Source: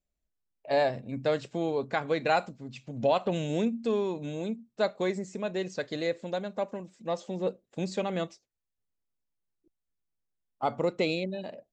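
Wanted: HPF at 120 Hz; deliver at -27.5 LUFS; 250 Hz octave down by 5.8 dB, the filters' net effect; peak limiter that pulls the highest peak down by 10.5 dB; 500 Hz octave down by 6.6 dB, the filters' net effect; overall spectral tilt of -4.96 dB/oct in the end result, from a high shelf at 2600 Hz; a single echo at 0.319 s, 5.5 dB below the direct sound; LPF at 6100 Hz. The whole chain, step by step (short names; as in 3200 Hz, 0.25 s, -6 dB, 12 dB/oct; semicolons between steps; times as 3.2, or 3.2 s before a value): HPF 120 Hz; LPF 6100 Hz; bell 250 Hz -5.5 dB; bell 500 Hz -6.5 dB; high shelf 2600 Hz -7 dB; limiter -27.5 dBFS; echo 0.319 s -5.5 dB; gain +11.5 dB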